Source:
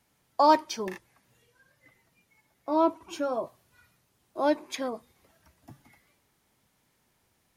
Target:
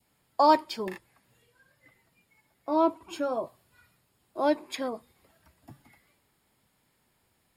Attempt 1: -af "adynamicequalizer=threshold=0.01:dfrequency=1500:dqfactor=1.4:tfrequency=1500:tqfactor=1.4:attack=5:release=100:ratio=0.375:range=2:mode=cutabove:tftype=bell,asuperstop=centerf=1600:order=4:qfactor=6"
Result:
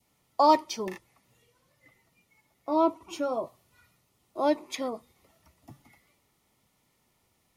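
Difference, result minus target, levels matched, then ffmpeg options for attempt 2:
8000 Hz band +5.5 dB
-af "adynamicequalizer=threshold=0.01:dfrequency=1500:dqfactor=1.4:tfrequency=1500:tqfactor=1.4:attack=5:release=100:ratio=0.375:range=2:mode=cutabove:tftype=bell,asuperstop=centerf=6000:order=4:qfactor=6"

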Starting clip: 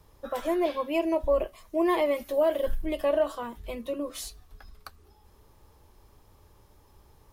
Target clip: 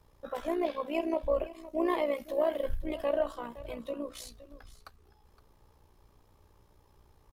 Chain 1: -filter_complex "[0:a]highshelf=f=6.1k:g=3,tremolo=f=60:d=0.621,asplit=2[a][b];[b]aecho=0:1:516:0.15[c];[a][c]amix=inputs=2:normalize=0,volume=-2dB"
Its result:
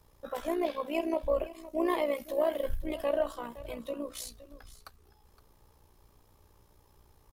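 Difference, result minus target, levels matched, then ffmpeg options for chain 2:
8000 Hz band +5.5 dB
-filter_complex "[0:a]highshelf=f=6.1k:g=-5,tremolo=f=60:d=0.621,asplit=2[a][b];[b]aecho=0:1:516:0.15[c];[a][c]amix=inputs=2:normalize=0,volume=-2dB"

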